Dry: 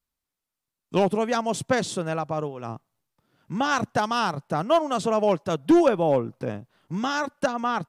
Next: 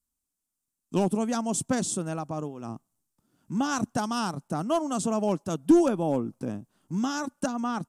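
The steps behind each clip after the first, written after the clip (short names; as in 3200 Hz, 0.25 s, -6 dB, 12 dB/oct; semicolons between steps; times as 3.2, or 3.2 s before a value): graphic EQ 125/250/500/1000/2000/4000/8000 Hz -5/+5/-8/-3/-10/-7/+8 dB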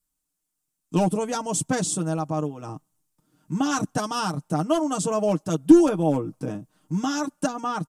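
comb 6.5 ms, depth 76%; gain +2 dB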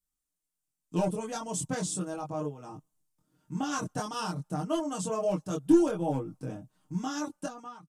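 ending faded out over 0.63 s; chorus voices 4, 0.36 Hz, delay 22 ms, depth 1.3 ms; gain -4.5 dB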